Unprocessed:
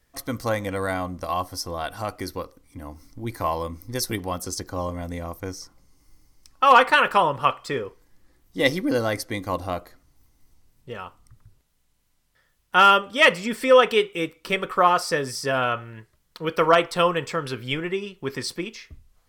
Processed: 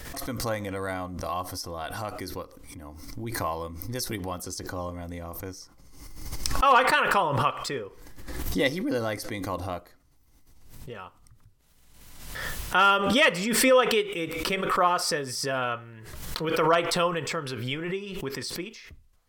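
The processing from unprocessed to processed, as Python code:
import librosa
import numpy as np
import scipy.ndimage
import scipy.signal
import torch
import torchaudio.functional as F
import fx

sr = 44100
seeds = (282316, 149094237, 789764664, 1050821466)

y = fx.pre_swell(x, sr, db_per_s=39.0)
y = y * 10.0 ** (-5.5 / 20.0)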